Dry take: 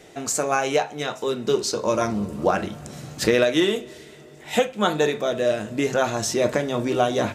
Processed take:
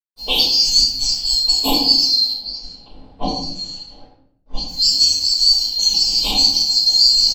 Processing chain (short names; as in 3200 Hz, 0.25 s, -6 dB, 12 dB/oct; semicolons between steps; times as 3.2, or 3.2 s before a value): band-swap scrambler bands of 4000 Hz; Chebyshev band-stop 900–3000 Hz, order 3; low-pass opened by the level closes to 570 Hz, open at -21 dBFS; comb 3.8 ms, depth 56%; compressor 2.5:1, threshold -33 dBFS, peak gain reduction 14 dB; crossover distortion -58 dBFS; 2.32–4.68 tape spacing loss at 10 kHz 33 dB; shoebox room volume 140 m³, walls mixed, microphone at 4.9 m; gain +3.5 dB